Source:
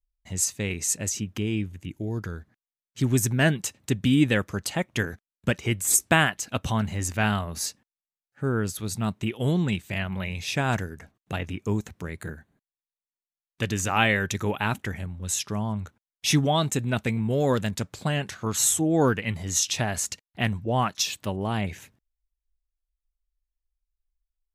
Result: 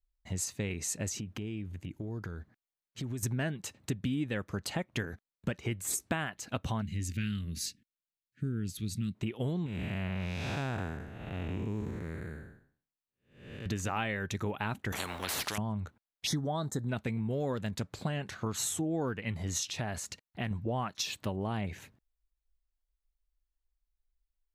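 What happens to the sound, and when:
1.2–3.23 compressor 5:1, threshold -35 dBFS
6.82–9.15 Chebyshev band-stop 260–2500 Hz
9.66–13.66 time blur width 0.327 s
14.92–15.58 spectral compressor 10:1
16.27–16.89 Butterworth band-stop 2600 Hz, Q 1.4
19.69–20.51 compressor 1.5:1, threshold -39 dBFS
whole clip: bell 10000 Hz -7.5 dB 2.8 oct; compressor 5:1, threshold -31 dBFS; bell 4200 Hz +3.5 dB 0.3 oct

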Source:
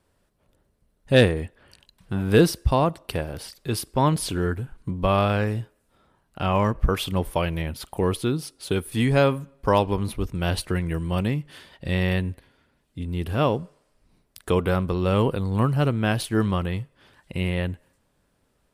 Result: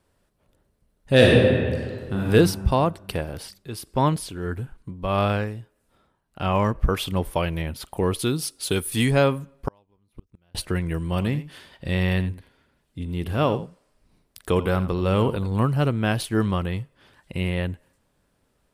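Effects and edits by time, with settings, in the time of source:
1.15–2.27 reverb throw, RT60 1.9 s, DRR -3.5 dB
3.4–6.46 tremolo 1.6 Hz, depth 61%
8.19–9.11 high shelf 3200 Hz +10 dB
9.68–10.55 flipped gate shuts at -20 dBFS, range -40 dB
11.11–15.52 echo 86 ms -13.5 dB

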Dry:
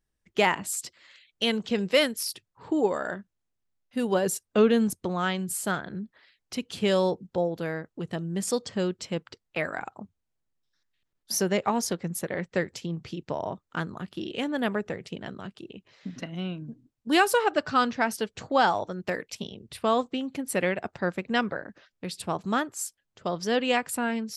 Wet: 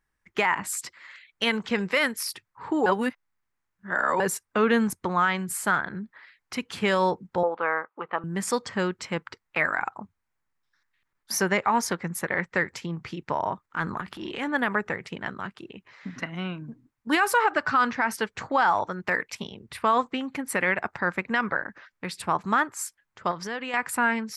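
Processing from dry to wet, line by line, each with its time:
2.86–4.2 reverse
7.43–8.24 speaker cabinet 420–2800 Hz, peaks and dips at 520 Hz +5 dB, 860 Hz +6 dB, 1200 Hz +10 dB, 1800 Hz -4 dB
13.64–14.5 transient shaper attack -9 dB, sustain +7 dB
23.31–23.74 compressor 10:1, threshold -31 dBFS
whole clip: band shelf 1400 Hz +10.5 dB; limiter -12.5 dBFS

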